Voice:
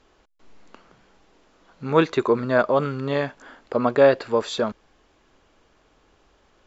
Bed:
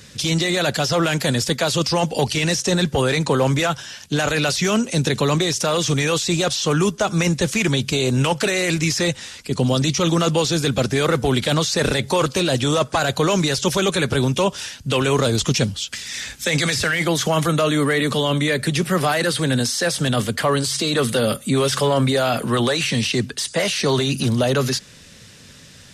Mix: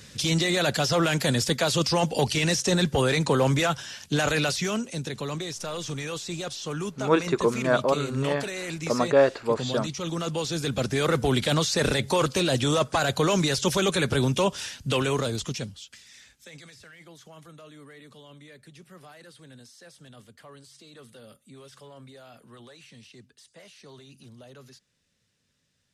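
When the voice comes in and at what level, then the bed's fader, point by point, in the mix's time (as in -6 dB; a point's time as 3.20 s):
5.15 s, -3.5 dB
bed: 4.35 s -4 dB
5.04 s -13.5 dB
9.98 s -13.5 dB
11.17 s -4.5 dB
14.90 s -4.5 dB
16.75 s -29.5 dB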